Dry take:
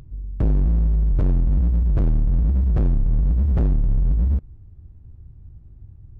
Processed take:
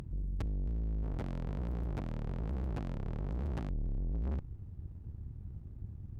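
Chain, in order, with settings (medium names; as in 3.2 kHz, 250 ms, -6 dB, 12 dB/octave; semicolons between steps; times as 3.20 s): high-pass 68 Hz 6 dB/octave, from 1.03 s 330 Hz, from 3.69 s 72 Hz; valve stage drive 38 dB, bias 0.75; trim +5.5 dB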